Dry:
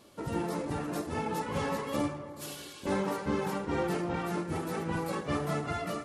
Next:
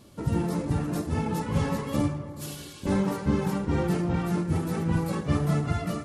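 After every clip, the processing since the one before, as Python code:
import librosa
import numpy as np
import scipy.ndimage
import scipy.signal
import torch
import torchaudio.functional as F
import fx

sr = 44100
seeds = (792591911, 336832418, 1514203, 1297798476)

y = fx.bass_treble(x, sr, bass_db=13, treble_db=3)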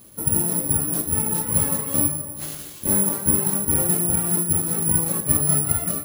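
y = (np.kron(x[::4], np.eye(4)[0]) * 4)[:len(x)]
y = y * 10.0 ** (-1.0 / 20.0)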